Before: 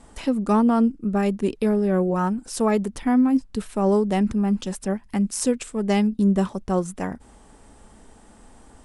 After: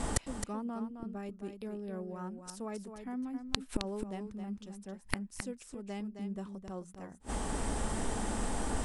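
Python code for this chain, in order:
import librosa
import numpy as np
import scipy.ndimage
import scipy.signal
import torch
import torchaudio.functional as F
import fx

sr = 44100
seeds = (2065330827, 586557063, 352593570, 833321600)

y = fx.gate_flip(x, sr, shuts_db=-29.0, range_db=-35)
y = y + 10.0 ** (-8.0 / 20.0) * np.pad(y, (int(265 * sr / 1000.0), 0))[:len(y)]
y = y * 10.0 ** (14.5 / 20.0)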